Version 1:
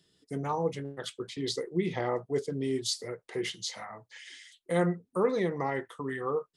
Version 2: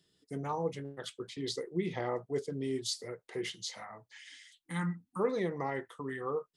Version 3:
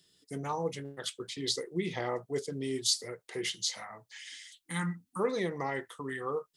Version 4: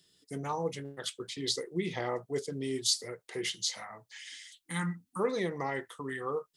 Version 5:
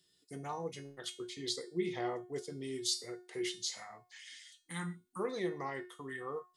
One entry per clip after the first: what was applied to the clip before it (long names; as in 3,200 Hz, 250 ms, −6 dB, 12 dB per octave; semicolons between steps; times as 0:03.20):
gain on a spectral selection 0:04.13–0:05.20, 330–750 Hz −21 dB; level −4 dB
high-shelf EQ 2,400 Hz +9.5 dB
no processing that can be heard
tuned comb filter 360 Hz, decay 0.37 s, harmonics all, mix 80%; level +6 dB